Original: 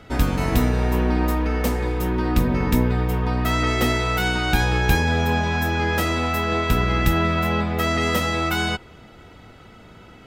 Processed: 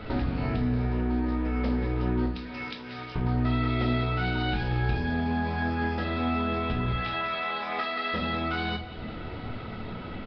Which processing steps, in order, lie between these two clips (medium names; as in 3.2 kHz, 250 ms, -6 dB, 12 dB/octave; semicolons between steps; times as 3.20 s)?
2.26–3.16 s: differentiator; 6.92–8.14 s: Bessel high-pass 880 Hz, order 2; compression 8:1, threshold -34 dBFS, peak gain reduction 21 dB; feedback delay 182 ms, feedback 31%, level -15 dB; on a send at -2.5 dB: reverberation RT60 0.45 s, pre-delay 9 ms; on the sum: trim +5 dB; Nellymoser 22 kbps 11.025 kHz